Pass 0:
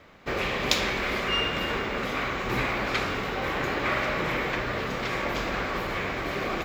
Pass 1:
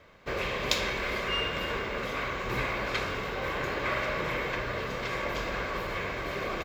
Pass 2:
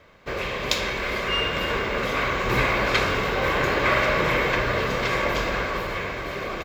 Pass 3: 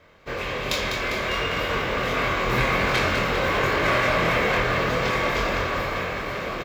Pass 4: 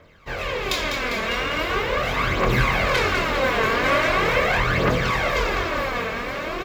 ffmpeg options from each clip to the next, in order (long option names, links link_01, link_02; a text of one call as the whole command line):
ffmpeg -i in.wav -af "aecho=1:1:1.9:0.32,volume=-4dB" out.wav
ffmpeg -i in.wav -af "dynaudnorm=framelen=230:gausssize=11:maxgain=6.5dB,volume=3dB" out.wav
ffmpeg -i in.wav -filter_complex "[0:a]asoftclip=type=hard:threshold=-15dB,asplit=2[link_01][link_02];[link_02]adelay=24,volume=-3dB[link_03];[link_01][link_03]amix=inputs=2:normalize=0,asplit=9[link_04][link_05][link_06][link_07][link_08][link_09][link_10][link_11][link_12];[link_05]adelay=200,afreqshift=47,volume=-7dB[link_13];[link_06]adelay=400,afreqshift=94,volume=-11.2dB[link_14];[link_07]adelay=600,afreqshift=141,volume=-15.3dB[link_15];[link_08]adelay=800,afreqshift=188,volume=-19.5dB[link_16];[link_09]adelay=1000,afreqshift=235,volume=-23.6dB[link_17];[link_10]adelay=1200,afreqshift=282,volume=-27.8dB[link_18];[link_11]adelay=1400,afreqshift=329,volume=-31.9dB[link_19];[link_12]adelay=1600,afreqshift=376,volume=-36.1dB[link_20];[link_04][link_13][link_14][link_15][link_16][link_17][link_18][link_19][link_20]amix=inputs=9:normalize=0,volume=-2.5dB" out.wav
ffmpeg -i in.wav -af "aphaser=in_gain=1:out_gain=1:delay=4.6:decay=0.53:speed=0.41:type=triangular" out.wav